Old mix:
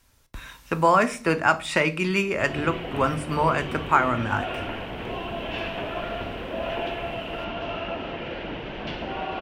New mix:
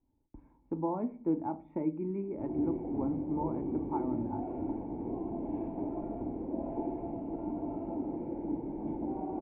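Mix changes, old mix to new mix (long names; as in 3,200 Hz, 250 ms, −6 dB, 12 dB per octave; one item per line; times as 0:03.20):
background +6.0 dB
master: add formant resonators in series u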